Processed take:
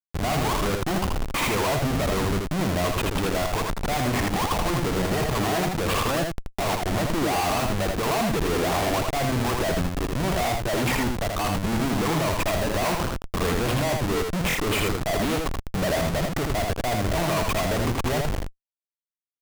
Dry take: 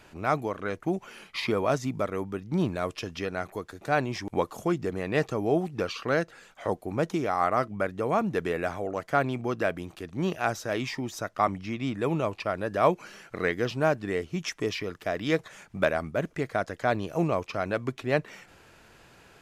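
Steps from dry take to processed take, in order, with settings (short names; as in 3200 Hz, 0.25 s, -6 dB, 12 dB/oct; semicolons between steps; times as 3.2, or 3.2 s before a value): LPF 3700 Hz 24 dB/oct; band shelf 870 Hz +10 dB 1 oct; Schmitt trigger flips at -37.5 dBFS; on a send: echo 80 ms -3.5 dB; on the sum: stuck buffer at 14.48, samples 1024, times 2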